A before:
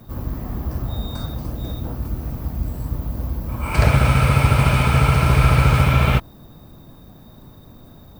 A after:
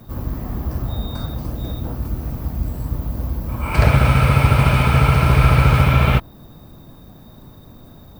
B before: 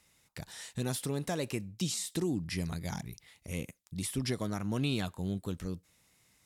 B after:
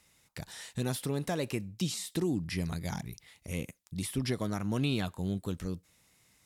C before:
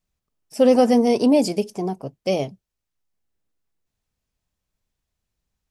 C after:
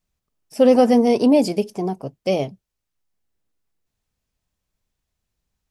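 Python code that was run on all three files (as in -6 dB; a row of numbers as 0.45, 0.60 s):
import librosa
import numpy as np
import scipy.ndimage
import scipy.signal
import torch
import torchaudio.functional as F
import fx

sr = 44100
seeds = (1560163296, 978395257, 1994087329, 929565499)

y = fx.dynamic_eq(x, sr, hz=7400.0, q=1.0, threshold_db=-49.0, ratio=4.0, max_db=-5)
y = F.gain(torch.from_numpy(y), 1.5).numpy()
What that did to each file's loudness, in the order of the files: +1.5, +1.0, +1.5 LU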